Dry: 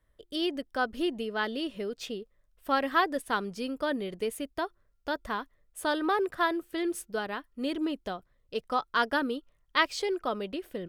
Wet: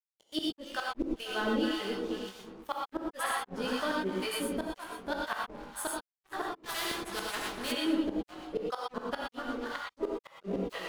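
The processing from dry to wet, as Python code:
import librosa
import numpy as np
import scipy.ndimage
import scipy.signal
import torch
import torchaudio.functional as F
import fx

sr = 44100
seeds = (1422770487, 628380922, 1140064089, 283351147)

y = fx.reverse_delay_fb(x, sr, ms=121, feedback_pct=79, wet_db=-11.5)
y = fx.harmonic_tremolo(y, sr, hz=2.0, depth_pct=100, crossover_hz=660.0)
y = fx.leveller(y, sr, passes=2)
y = fx.chorus_voices(y, sr, voices=6, hz=0.41, base_ms=19, depth_ms=3.5, mix_pct=45)
y = fx.gate_flip(y, sr, shuts_db=-21.0, range_db=-40)
y = np.sign(y) * np.maximum(np.abs(y) - 10.0 ** (-56.5 / 20.0), 0.0)
y = fx.rev_gated(y, sr, seeds[0], gate_ms=140, shape='rising', drr_db=-1.0)
y = fx.spectral_comp(y, sr, ratio=2.0, at=(6.63, 7.71), fade=0.02)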